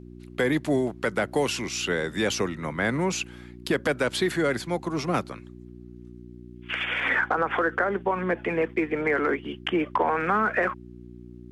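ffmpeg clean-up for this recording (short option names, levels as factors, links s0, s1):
-af "bandreject=f=60.2:t=h:w=4,bandreject=f=120.4:t=h:w=4,bandreject=f=180.6:t=h:w=4,bandreject=f=240.8:t=h:w=4,bandreject=f=301:t=h:w=4,bandreject=f=361.2:t=h:w=4"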